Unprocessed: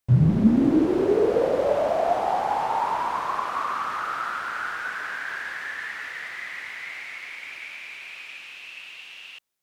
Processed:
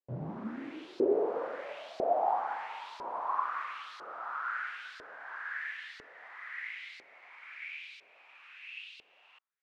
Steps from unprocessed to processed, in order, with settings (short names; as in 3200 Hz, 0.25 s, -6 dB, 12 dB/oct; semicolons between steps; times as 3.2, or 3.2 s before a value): LFO band-pass saw up 1 Hz 430–4600 Hz; dynamic EQ 270 Hz, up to +5 dB, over -47 dBFS, Q 1.6; gain -3 dB